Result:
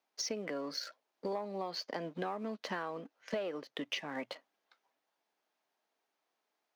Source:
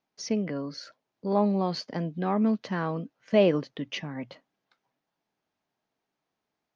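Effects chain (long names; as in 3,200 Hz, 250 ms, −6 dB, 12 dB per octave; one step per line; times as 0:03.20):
leveller curve on the samples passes 1
high-pass filter 420 Hz 12 dB per octave
downward compressor 12 to 1, threshold −37 dBFS, peak gain reduction 21.5 dB
level +2.5 dB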